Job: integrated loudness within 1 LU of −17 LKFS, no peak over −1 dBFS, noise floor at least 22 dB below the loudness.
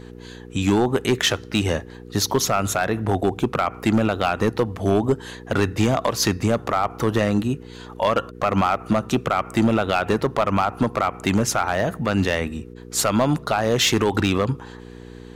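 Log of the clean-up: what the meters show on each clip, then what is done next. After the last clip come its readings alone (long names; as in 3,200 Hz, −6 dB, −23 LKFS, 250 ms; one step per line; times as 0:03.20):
share of clipped samples 1.2%; peaks flattened at −11.5 dBFS; mains hum 60 Hz; hum harmonics up to 480 Hz; level of the hum −40 dBFS; integrated loudness −22.0 LKFS; sample peak −11.5 dBFS; target loudness −17.0 LKFS
→ clipped peaks rebuilt −11.5 dBFS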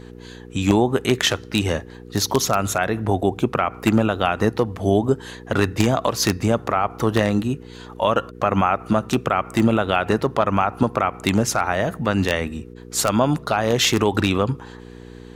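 share of clipped samples 0.0%; mains hum 60 Hz; hum harmonics up to 480 Hz; level of the hum −39 dBFS
→ hum removal 60 Hz, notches 8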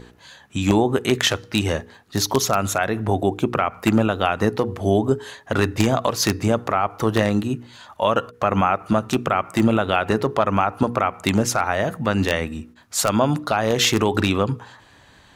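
mains hum none found; integrated loudness −21.0 LKFS; sample peak −2.5 dBFS; target loudness −17.0 LKFS
→ level +4 dB
brickwall limiter −1 dBFS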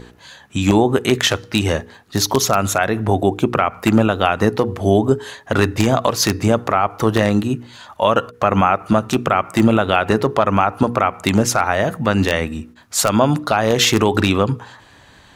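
integrated loudness −17.5 LKFS; sample peak −1.0 dBFS; background noise floor −47 dBFS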